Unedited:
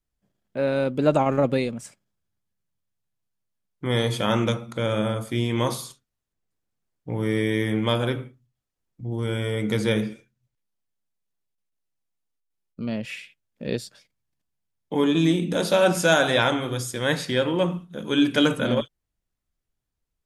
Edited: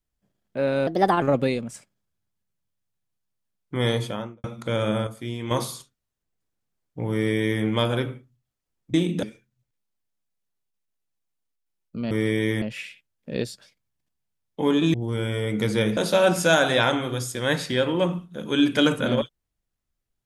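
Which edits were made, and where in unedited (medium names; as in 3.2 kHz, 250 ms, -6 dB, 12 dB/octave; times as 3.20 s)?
0.87–1.32 s: speed 129%
3.97–4.54 s: studio fade out
5.17–5.61 s: gain -7 dB
7.22–7.73 s: copy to 12.95 s
9.04–10.07 s: swap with 15.27–15.56 s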